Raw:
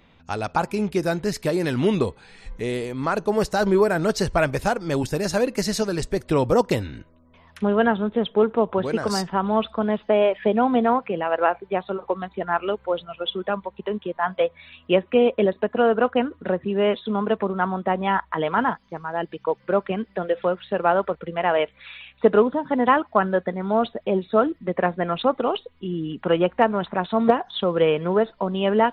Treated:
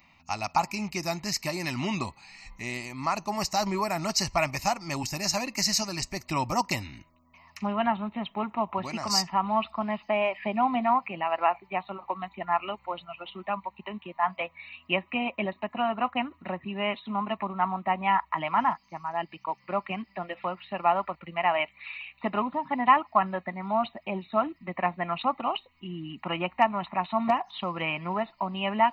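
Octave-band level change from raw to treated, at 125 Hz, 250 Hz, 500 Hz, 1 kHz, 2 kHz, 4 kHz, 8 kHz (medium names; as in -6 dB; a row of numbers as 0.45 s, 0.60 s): -8.0 dB, -9.0 dB, -12.0 dB, -1.5 dB, -3.5 dB, 0.0 dB, no reading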